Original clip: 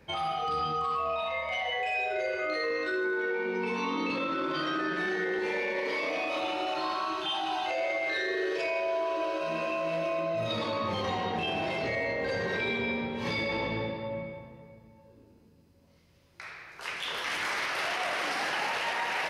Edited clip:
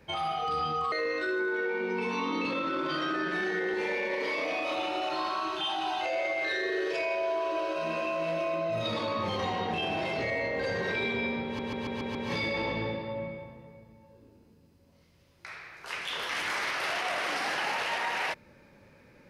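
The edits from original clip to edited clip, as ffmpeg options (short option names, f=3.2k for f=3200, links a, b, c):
-filter_complex "[0:a]asplit=7[a][b][c][d][e][f][g];[a]atrim=end=0.922[h];[b]atrim=start=2.568:end=13.242[i];[c]atrim=start=13.098:end=13.242[j];[d]atrim=start=13.098:end=13.242[k];[e]atrim=start=13.098:end=13.242[l];[f]atrim=start=13.098:end=13.242[m];[g]atrim=start=13.098[n];[h][i]acrossfade=d=0.004:c1=hsin:c2=hsin[o];[o][j]acrossfade=d=0.004:c1=hsin:c2=hsin[p];[p][k]acrossfade=d=0.004:c1=hsin:c2=hsin[q];[q][l]acrossfade=d=0.004:c1=hsin:c2=hsin[r];[r][m]acrossfade=d=0.004:c1=hsin:c2=hsin[s];[s][n]acrossfade=d=0.004:c1=hsin:c2=hsin"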